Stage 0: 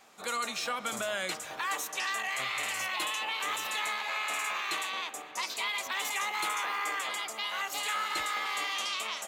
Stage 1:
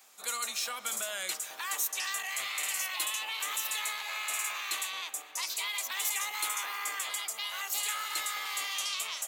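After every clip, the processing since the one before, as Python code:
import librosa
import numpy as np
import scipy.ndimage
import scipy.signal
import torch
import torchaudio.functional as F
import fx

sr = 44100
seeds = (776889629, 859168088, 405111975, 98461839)

y = fx.riaa(x, sr, side='recording')
y = y * 10.0 ** (-6.0 / 20.0)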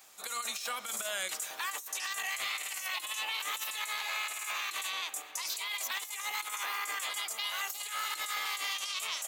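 y = fx.dmg_crackle(x, sr, seeds[0], per_s=280.0, level_db=-55.0)
y = fx.over_compress(y, sr, threshold_db=-36.0, ratio=-0.5)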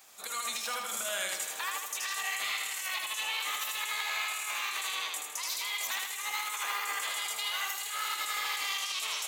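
y = fx.echo_feedback(x, sr, ms=79, feedback_pct=48, wet_db=-3.5)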